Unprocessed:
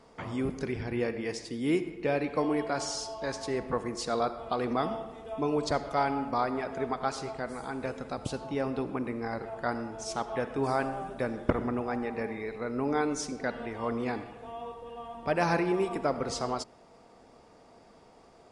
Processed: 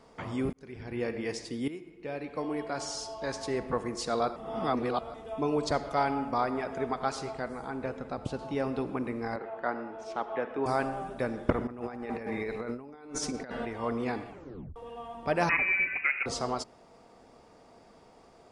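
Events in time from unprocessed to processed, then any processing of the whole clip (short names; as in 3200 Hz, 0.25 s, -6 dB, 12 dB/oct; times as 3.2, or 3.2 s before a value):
0.53–1.18 fade in
1.68–3.39 fade in, from -16.5 dB
4.36–5.14 reverse
6.14–6.89 notch 4200 Hz, Q 9.4
7.48–8.39 high shelf 3800 Hz -11.5 dB
9.36–10.66 three-band isolator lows -15 dB, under 230 Hz, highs -22 dB, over 3400 Hz
11.67–13.65 negative-ratio compressor -36 dBFS, ratio -0.5
14.28 tape stop 0.48 s
15.49–16.26 inverted band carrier 2700 Hz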